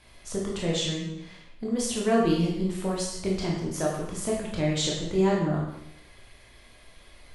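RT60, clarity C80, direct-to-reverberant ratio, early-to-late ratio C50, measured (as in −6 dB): 0.80 s, 5.0 dB, −3.5 dB, 2.0 dB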